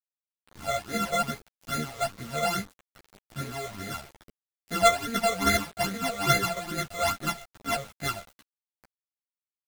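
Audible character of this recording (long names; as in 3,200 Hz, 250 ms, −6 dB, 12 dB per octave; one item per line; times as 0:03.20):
a buzz of ramps at a fixed pitch in blocks of 64 samples
phaser sweep stages 12, 2.4 Hz, lowest notch 270–1,000 Hz
a quantiser's noise floor 8 bits, dither none
a shimmering, thickened sound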